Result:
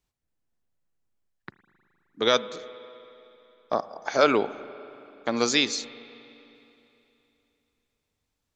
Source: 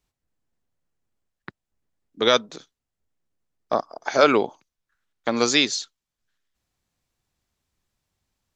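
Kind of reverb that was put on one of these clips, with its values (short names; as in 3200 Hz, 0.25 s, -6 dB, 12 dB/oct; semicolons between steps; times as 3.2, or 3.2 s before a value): spring tank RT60 3.1 s, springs 38/52 ms, chirp 70 ms, DRR 15 dB; gain -3.5 dB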